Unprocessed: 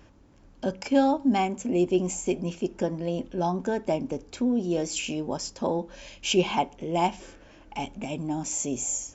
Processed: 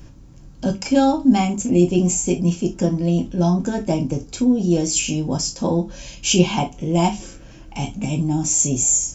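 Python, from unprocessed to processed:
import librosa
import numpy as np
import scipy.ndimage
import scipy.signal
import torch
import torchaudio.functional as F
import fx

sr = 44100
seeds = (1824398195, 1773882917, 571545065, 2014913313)

y = fx.bass_treble(x, sr, bass_db=13, treble_db=11)
y = fx.rev_gated(y, sr, seeds[0], gate_ms=90, shape='falling', drr_db=2.5)
y = y * 10.0 ** (1.0 / 20.0)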